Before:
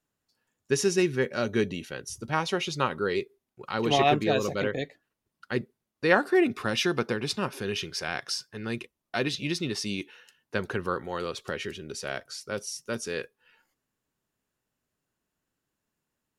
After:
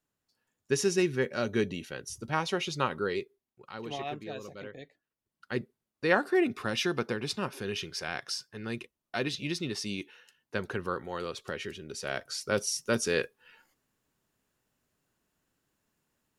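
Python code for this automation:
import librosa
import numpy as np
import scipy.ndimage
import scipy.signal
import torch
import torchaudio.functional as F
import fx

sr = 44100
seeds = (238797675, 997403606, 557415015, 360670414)

y = fx.gain(x, sr, db=fx.line((3.01, -2.5), (4.02, -15.0), (4.78, -15.0), (5.54, -3.5), (11.9, -3.5), (12.47, 4.5)))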